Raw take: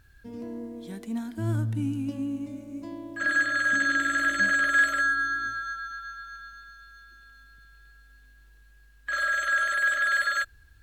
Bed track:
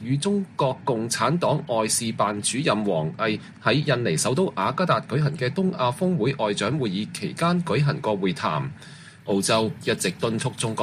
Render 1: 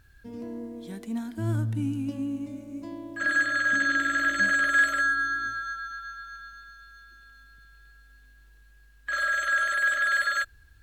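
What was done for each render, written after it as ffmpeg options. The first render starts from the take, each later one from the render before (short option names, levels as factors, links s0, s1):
-filter_complex "[0:a]asettb=1/sr,asplit=3[s0][s1][s2];[s0]atrim=end=3.594[s3];[s1]atrim=start=3.59:end=4.36,asetpts=PTS-STARTPTS,afade=t=in:d=0.004:c=qsin,afade=t=out:st=0.766:d=0.004:c=qsin,equalizer=f=9500:t=o:w=0.29:g=-14[s4];[s2]atrim=start=4.356[s5];[s3][s4]acrossfade=d=0.004:c1=hsin:c2=qsin[s6];[s6][s5]acrossfade=d=0.004:c1=qsin:c2=hsin"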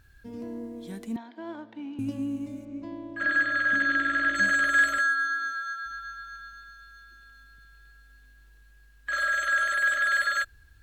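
-filter_complex "[0:a]asettb=1/sr,asplit=3[s0][s1][s2];[s0]atrim=end=1.164[s3];[s1]atrim=start=1.16:end=1.99,asetpts=PTS-STARTPTS,afade=t=in:d=0.004:c=qsin,afade=t=out:st=0.826:d=0.004:c=qsin,highpass=f=340:w=0.5412,highpass=f=340:w=1.3066,equalizer=f=410:t=q:w=4:g=-6,equalizer=f=880:t=q:w=4:g=5,equalizer=f=1400:t=q:w=4:g=-7,equalizer=f=2700:t=q:w=4:g=-4,lowpass=f=3800:w=0.5412,lowpass=f=3800:w=1.3066[s4];[s2]atrim=start=1.986[s5];[s3][s4]acrossfade=d=0.004:c1=hsin:c2=qsin[s6];[s6][s5]acrossfade=d=0.004:c1=qsin:c2=hsin,asettb=1/sr,asplit=3[s7][s8][s9];[s7]atrim=end=2.654[s10];[s8]atrim=start=2.65:end=4.35,asetpts=PTS-STARTPTS,afade=t=in:d=0.004:c=qsin,afade=t=out:st=1.696:d=0.004:c=qsin,lowpass=3800[s11];[s9]atrim=start=4.346[s12];[s10][s11]acrossfade=d=0.004:c1=hsin:c2=qsin[s13];[s13][s12]acrossfade=d=0.004:c1=qsin:c2=hsin,asettb=1/sr,asplit=3[s14][s15][s16];[s14]atrim=end=4.984[s17];[s15]atrim=start=4.98:end=5.86,asetpts=PTS-STARTPTS,afade=t=in:d=0.004:c=qsin,afade=t=out:st=0.876:d=0.004:c=qsin,highpass=460[s18];[s16]atrim=start=5.856[s19];[s17][s18]acrossfade=d=0.004:c1=hsin:c2=qsin[s20];[s20][s19]acrossfade=d=0.004:c1=qsin:c2=hsin"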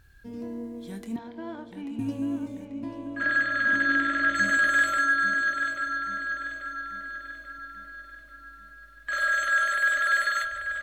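-filter_complex "[0:a]asplit=2[s0][s1];[s1]adelay=25,volume=0.282[s2];[s0][s2]amix=inputs=2:normalize=0,asplit=2[s3][s4];[s4]adelay=838,lowpass=f=4400:p=1,volume=0.422,asplit=2[s5][s6];[s6]adelay=838,lowpass=f=4400:p=1,volume=0.53,asplit=2[s7][s8];[s8]adelay=838,lowpass=f=4400:p=1,volume=0.53,asplit=2[s9][s10];[s10]adelay=838,lowpass=f=4400:p=1,volume=0.53,asplit=2[s11][s12];[s12]adelay=838,lowpass=f=4400:p=1,volume=0.53,asplit=2[s13][s14];[s14]adelay=838,lowpass=f=4400:p=1,volume=0.53[s15];[s5][s7][s9][s11][s13][s15]amix=inputs=6:normalize=0[s16];[s3][s16]amix=inputs=2:normalize=0"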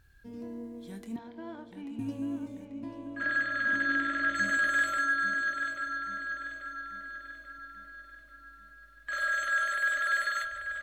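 -af "volume=0.562"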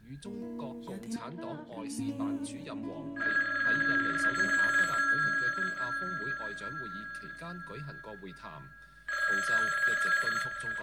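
-filter_complex "[1:a]volume=0.075[s0];[0:a][s0]amix=inputs=2:normalize=0"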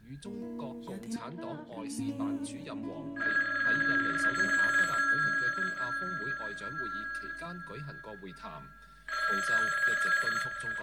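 -filter_complex "[0:a]asettb=1/sr,asplit=3[s0][s1][s2];[s0]atrim=end=6.784[s3];[s1]atrim=start=6.78:end=7.46,asetpts=PTS-STARTPTS,afade=t=in:d=0.004:c=qsin,afade=t=out:st=0.676:d=0.004:c=qsin,aecho=1:1:3:0.65,atrim=end_sample=29988[s4];[s2]atrim=start=7.456[s5];[s3][s4]acrossfade=d=0.004:c1=hsin:c2=qsin[s6];[s6][s5]acrossfade=d=0.004:c1=qsin:c2=hsin,asettb=1/sr,asplit=3[s7][s8][s9];[s7]atrim=end=8.354[s10];[s8]atrim=start=8.35:end=9.4,asetpts=PTS-STARTPTS,afade=t=in:d=0.004:c=qsin,afade=t=out:st=1.046:d=0.004:c=qsin,aecho=1:1:4.5:0.68,atrim=end_sample=46305[s11];[s9]atrim=start=9.396[s12];[s10][s11]acrossfade=d=0.004:c1=hsin:c2=qsin[s13];[s13][s12]acrossfade=d=0.004:c1=qsin:c2=hsin"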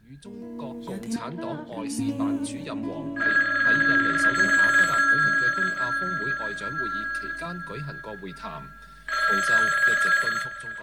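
-af "dynaudnorm=f=100:g=13:m=2.51"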